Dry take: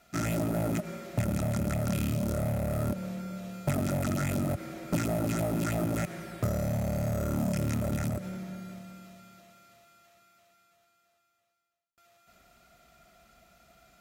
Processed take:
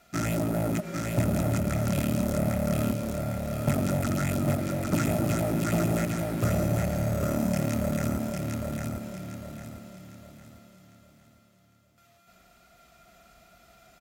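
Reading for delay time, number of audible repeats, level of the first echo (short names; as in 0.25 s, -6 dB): 0.803 s, 4, -3.5 dB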